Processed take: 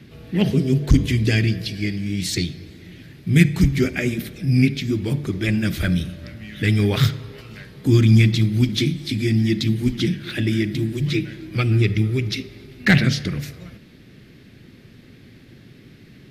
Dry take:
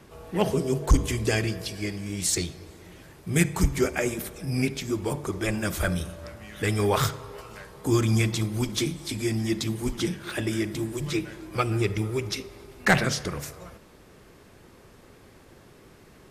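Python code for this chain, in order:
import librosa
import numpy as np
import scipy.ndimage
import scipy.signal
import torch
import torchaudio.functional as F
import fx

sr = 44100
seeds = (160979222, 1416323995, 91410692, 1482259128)

y = fx.graphic_eq(x, sr, hz=(125, 250, 500, 1000, 2000, 4000, 8000), db=(10, 9, -3, -11, 7, 8, -8))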